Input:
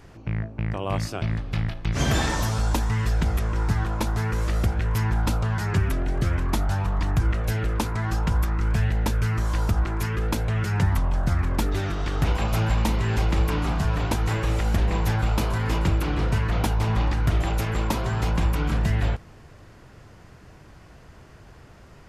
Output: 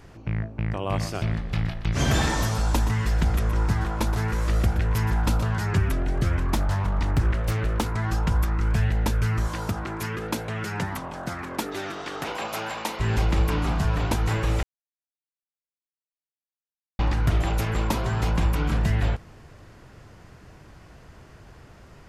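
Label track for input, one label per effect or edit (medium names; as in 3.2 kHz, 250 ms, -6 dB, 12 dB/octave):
0.880000	5.600000	delay 122 ms -11 dB
6.550000	7.860000	loudspeaker Doppler distortion depth 0.72 ms
9.470000	12.990000	high-pass 110 Hz -> 470 Hz
14.630000	16.990000	mute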